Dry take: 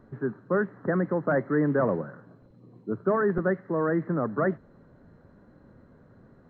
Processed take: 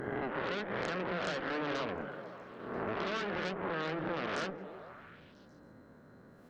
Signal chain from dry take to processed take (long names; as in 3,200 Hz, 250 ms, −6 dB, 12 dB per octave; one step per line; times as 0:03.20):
peak hold with a rise ahead of every peak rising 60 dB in 1.13 s
harmonic generator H 8 −14 dB, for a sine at −10 dBFS
spectral tilt +2 dB per octave
downward compressor 12 to 1, threshold −30 dBFS, peak gain reduction 13.5 dB
echo through a band-pass that steps 141 ms, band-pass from 230 Hz, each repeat 0.7 octaves, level −4.5 dB
level −2.5 dB